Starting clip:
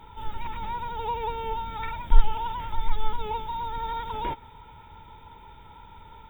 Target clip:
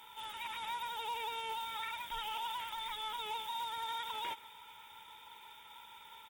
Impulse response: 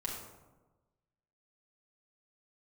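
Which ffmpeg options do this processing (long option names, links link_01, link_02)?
-af "aderivative,alimiter=level_in=16.5dB:limit=-24dB:level=0:latency=1:release=40,volume=-16.5dB,acrusher=bits=4:mode=log:mix=0:aa=0.000001,aecho=1:1:128:0.075,volume=11dB" -ar 48000 -c:a libmp3lame -b:a 64k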